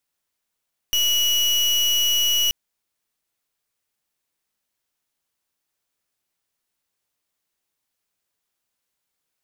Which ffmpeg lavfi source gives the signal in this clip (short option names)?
-f lavfi -i "aevalsrc='0.106*(2*lt(mod(2920*t,1),0.34)-1)':d=1.58:s=44100"